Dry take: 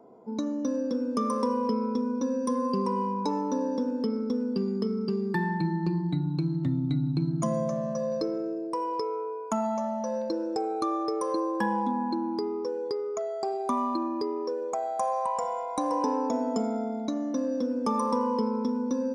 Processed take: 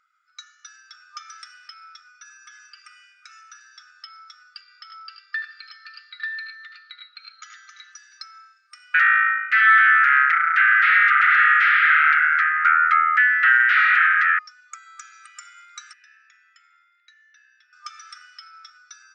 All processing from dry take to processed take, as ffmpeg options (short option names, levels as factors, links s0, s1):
-filter_complex "[0:a]asettb=1/sr,asplit=3[s0][s1][s2];[s0]atrim=end=2.084[s3];[s1]atrim=start=2.08:end=3.59,asetpts=PTS-STARTPTS,afade=t=in:d=0.004:c=qsin,afade=t=out:st=1.506:d=0.004:c=qsin,acrossover=split=3500[s4][s5];[s5]acompressor=threshold=0.00355:ratio=4:attack=1:release=60[s6];[s4][s6]amix=inputs=2:normalize=0,bandreject=f=4000:w=6.5,aecho=1:1:6.5:0.39,atrim=end_sample=66591[s7];[s2]atrim=start=3.586[s8];[s3][s7]acrossfade=d=0.004:c1=hsin:c2=qsin[s9];[s9][s8]acrossfade=d=0.004:c1=qsin:c2=hsin,asettb=1/sr,asplit=3[s10][s11][s12];[s10]atrim=end=4.614[s13];[s11]atrim=start=4.61:end=7.92,asetpts=PTS-STARTPTS,afade=t=in:d=0.004:c=qsin,afade=t=out:st=3.306:d=0.004:c=qsin,lowpass=f=5400:w=0.5412,lowpass=f=5400:w=1.3066,aecho=1:1:79|98|511|855|891:0.316|0.422|0.1|0.211|0.708,atrim=end_sample=145971[s14];[s12]atrim=start=7.916[s15];[s13][s14]acrossfade=d=0.004:c1=hsin:c2=qsin[s16];[s16][s15]acrossfade=d=0.004:c1=qsin:c2=hsin,asettb=1/sr,asplit=3[s17][s18][s19];[s17]atrim=end=8.944[s20];[s18]atrim=start=8.94:end=14.39,asetpts=PTS-STARTPTS,afade=t=in:d=0.004:c=qsin,afade=t=out:st=5.446:d=0.004:c=qsin,aeval=exprs='0.178*sin(PI/2*7.94*val(0)/0.178)':c=same,asuperpass=centerf=1600:order=4:qfactor=1.9[s21];[s19]atrim=start=14.386[s22];[s20][s21]acrossfade=d=0.004:c1=hsin:c2=qsin[s23];[s23][s22]acrossfade=d=0.004:c1=qsin:c2=hsin,asettb=1/sr,asplit=3[s24][s25][s26];[s24]atrim=end=15.934[s27];[s25]atrim=start=15.93:end=17.73,asetpts=PTS-STARTPTS,afade=t=in:d=0.004:c=qsin,afade=t=out:st=1.796:d=0.004:c=qsin,acontrast=28,asplit=3[s28][s29][s30];[s28]bandpass=f=530:t=q:w=8,volume=1[s31];[s29]bandpass=f=1840:t=q:w=8,volume=0.501[s32];[s30]bandpass=f=2480:t=q:w=8,volume=0.355[s33];[s31][s32][s33]amix=inputs=3:normalize=0[s34];[s26]atrim=start=17.726[s35];[s27][s34]acrossfade=d=0.004:c1=hsin:c2=qsin[s36];[s36][s35]acrossfade=d=0.004:c1=qsin:c2=hsin,highshelf=f=4600:g=-9,afftfilt=real='re*between(b*sr/4096,1200,8700)':imag='im*between(b*sr/4096,1200,8700)':win_size=4096:overlap=0.75,volume=2.99"